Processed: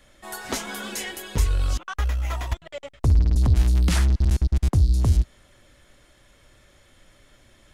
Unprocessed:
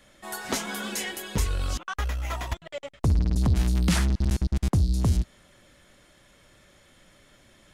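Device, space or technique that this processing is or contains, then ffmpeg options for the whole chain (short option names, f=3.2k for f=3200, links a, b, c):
low shelf boost with a cut just above: -af "lowshelf=f=100:g=7.5,equalizer=f=180:t=o:w=0.52:g=-6"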